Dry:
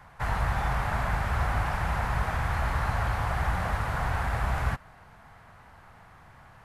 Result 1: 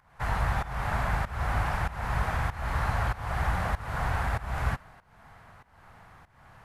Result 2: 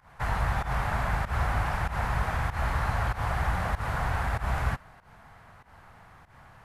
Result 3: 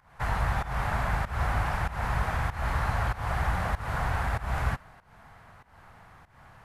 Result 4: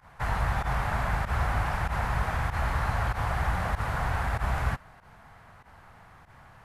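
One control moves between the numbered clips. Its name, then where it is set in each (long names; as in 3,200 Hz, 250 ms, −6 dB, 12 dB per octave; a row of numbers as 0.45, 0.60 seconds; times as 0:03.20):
fake sidechain pumping, release: 377, 138, 247, 77 milliseconds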